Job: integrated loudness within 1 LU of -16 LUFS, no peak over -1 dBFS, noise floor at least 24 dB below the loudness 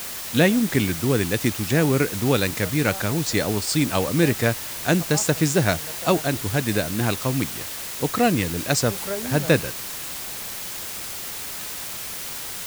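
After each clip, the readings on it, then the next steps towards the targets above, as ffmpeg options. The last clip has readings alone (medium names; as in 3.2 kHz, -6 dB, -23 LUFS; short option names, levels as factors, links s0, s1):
noise floor -33 dBFS; noise floor target -47 dBFS; loudness -23.0 LUFS; peak level -4.0 dBFS; loudness target -16.0 LUFS
-> -af "afftdn=nr=14:nf=-33"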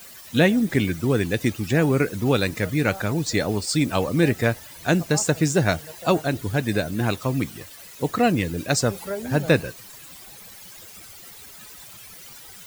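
noise floor -44 dBFS; noise floor target -47 dBFS
-> -af "afftdn=nr=6:nf=-44"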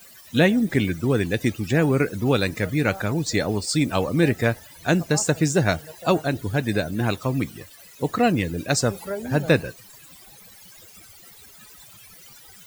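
noise floor -48 dBFS; loudness -23.0 LUFS; peak level -4.5 dBFS; loudness target -16.0 LUFS
-> -af "volume=2.24,alimiter=limit=0.891:level=0:latency=1"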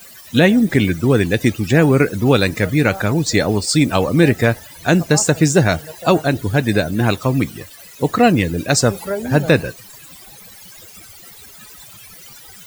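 loudness -16.0 LUFS; peak level -1.0 dBFS; noise floor -41 dBFS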